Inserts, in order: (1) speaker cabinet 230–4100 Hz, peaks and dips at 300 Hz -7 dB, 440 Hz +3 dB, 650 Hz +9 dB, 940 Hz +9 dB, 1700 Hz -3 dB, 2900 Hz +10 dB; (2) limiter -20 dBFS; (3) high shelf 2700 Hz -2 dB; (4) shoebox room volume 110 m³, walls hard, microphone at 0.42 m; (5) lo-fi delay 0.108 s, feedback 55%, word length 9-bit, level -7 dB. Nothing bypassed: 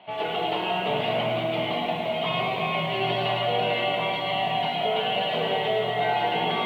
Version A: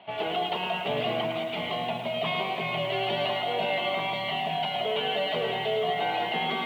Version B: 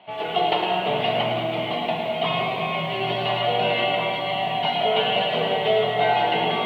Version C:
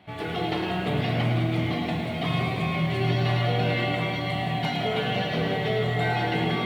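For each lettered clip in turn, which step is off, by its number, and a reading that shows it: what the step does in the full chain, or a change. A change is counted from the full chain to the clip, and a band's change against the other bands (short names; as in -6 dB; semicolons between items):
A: 4, 125 Hz band -2.5 dB; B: 2, mean gain reduction 1.5 dB; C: 1, 125 Hz band +14.0 dB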